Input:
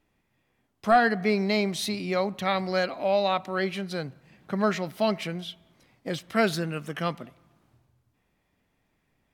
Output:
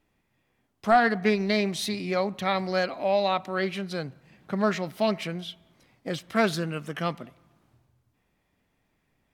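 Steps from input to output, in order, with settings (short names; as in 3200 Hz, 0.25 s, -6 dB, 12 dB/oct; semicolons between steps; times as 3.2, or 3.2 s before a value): 1.14–1.57 transient shaper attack +3 dB, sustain -7 dB; Doppler distortion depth 0.14 ms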